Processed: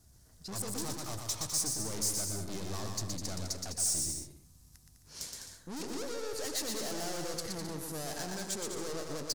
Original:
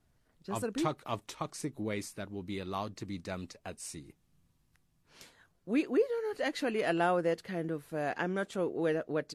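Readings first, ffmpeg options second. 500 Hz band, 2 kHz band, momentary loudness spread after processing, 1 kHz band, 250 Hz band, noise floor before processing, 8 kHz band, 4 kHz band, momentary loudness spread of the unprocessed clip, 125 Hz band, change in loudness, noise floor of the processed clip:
-8.5 dB, -7.5 dB, 11 LU, -7.5 dB, -6.5 dB, -73 dBFS, +15.5 dB, +7.5 dB, 13 LU, 0.0 dB, -1.0 dB, -60 dBFS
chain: -filter_complex "[0:a]equalizer=f=69:t=o:w=1.3:g=10.5,asplit=2[s0][s1];[s1]alimiter=level_in=1.41:limit=0.0631:level=0:latency=1,volume=0.708,volume=0.891[s2];[s0][s2]amix=inputs=2:normalize=0,aeval=exprs='(tanh(100*val(0)+0.45)-tanh(0.45))/100':c=same,highshelf=f=4000:t=q:w=1.5:g=12,aecho=1:1:120|204|262.8|304|332.8:0.631|0.398|0.251|0.158|0.1"

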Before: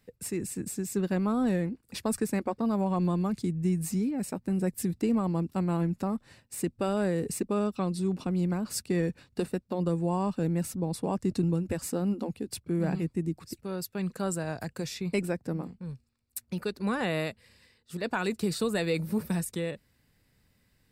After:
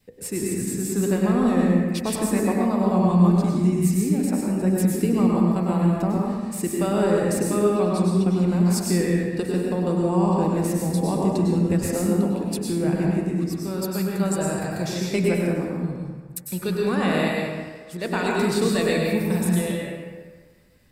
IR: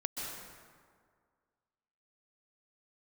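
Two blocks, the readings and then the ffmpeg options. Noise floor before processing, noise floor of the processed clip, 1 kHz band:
-70 dBFS, -42 dBFS, +8.0 dB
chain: -filter_complex "[0:a]bandreject=f=55.34:t=h:w=4,bandreject=f=110.68:t=h:w=4,bandreject=f=166.02:t=h:w=4,bandreject=f=221.36:t=h:w=4,bandreject=f=276.7:t=h:w=4,bandreject=f=332.04:t=h:w=4,bandreject=f=387.38:t=h:w=4,bandreject=f=442.72:t=h:w=4,bandreject=f=498.06:t=h:w=4,bandreject=f=553.4:t=h:w=4,bandreject=f=608.74:t=h:w=4,bandreject=f=664.08:t=h:w=4,bandreject=f=719.42:t=h:w=4,bandreject=f=774.76:t=h:w=4,bandreject=f=830.1:t=h:w=4,bandreject=f=885.44:t=h:w=4,bandreject=f=940.78:t=h:w=4,bandreject=f=996.12:t=h:w=4,bandreject=f=1051.46:t=h:w=4,bandreject=f=1106.8:t=h:w=4,bandreject=f=1162.14:t=h:w=4,bandreject=f=1217.48:t=h:w=4,bandreject=f=1272.82:t=h:w=4,bandreject=f=1328.16:t=h:w=4,bandreject=f=1383.5:t=h:w=4,bandreject=f=1438.84:t=h:w=4,bandreject=f=1494.18:t=h:w=4,bandreject=f=1549.52:t=h:w=4,bandreject=f=1604.86:t=h:w=4,bandreject=f=1660.2:t=h:w=4,bandreject=f=1715.54:t=h:w=4,bandreject=f=1770.88:t=h:w=4,bandreject=f=1826.22:t=h:w=4,bandreject=f=1881.56:t=h:w=4,bandreject=f=1936.9:t=h:w=4,bandreject=f=1992.24:t=h:w=4,bandreject=f=2047.58:t=h:w=4,bandreject=f=2102.92:t=h:w=4,bandreject=f=2158.26:t=h:w=4,bandreject=f=2213.6:t=h:w=4,adynamicequalizer=threshold=0.002:dfrequency=1400:dqfactor=3.8:tfrequency=1400:tqfactor=3.8:attack=5:release=100:ratio=0.375:range=2:mode=cutabove:tftype=bell[s0];[1:a]atrim=start_sample=2205,asetrate=57330,aresample=44100[s1];[s0][s1]afir=irnorm=-1:irlink=0,volume=2.51"

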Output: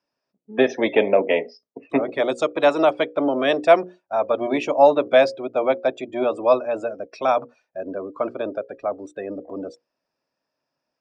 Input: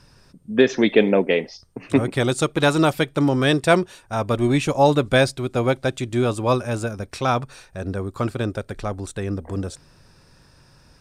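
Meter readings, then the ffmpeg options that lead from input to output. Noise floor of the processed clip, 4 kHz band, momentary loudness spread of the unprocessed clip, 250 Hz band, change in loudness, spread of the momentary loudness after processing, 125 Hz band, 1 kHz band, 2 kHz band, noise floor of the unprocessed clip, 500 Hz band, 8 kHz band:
-82 dBFS, -5.0 dB, 12 LU, -5.0 dB, 0.0 dB, 16 LU, -20.0 dB, +2.0 dB, -2.5 dB, -54 dBFS, +2.5 dB, under -10 dB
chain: -filter_complex "[0:a]acrossover=split=430[s0][s1];[s0]aeval=exprs='max(val(0),0)':c=same[s2];[s2][s1]amix=inputs=2:normalize=0,bandreject=f=60:t=h:w=6,bandreject=f=120:t=h:w=6,bandreject=f=180:t=h:w=6,bandreject=f=240:t=h:w=6,bandreject=f=300:t=h:w=6,bandreject=f=360:t=h:w=6,bandreject=f=420:t=h:w=6,bandreject=f=480:t=h:w=6,bandreject=f=540:t=h:w=6,afftdn=nr=23:nf=-35,highpass=270,equalizer=f=270:t=q:w=4:g=5,equalizer=f=630:t=q:w=4:g=9,equalizer=f=1500:t=q:w=4:g=-5,equalizer=f=3900:t=q:w=4:g=-8,lowpass=f=5600:w=0.5412,lowpass=f=5600:w=1.3066"

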